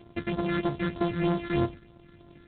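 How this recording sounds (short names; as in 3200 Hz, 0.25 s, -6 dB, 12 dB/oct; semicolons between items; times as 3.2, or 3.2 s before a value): a buzz of ramps at a fixed pitch in blocks of 128 samples; phasing stages 8, 3.2 Hz, lowest notch 770–2600 Hz; G.726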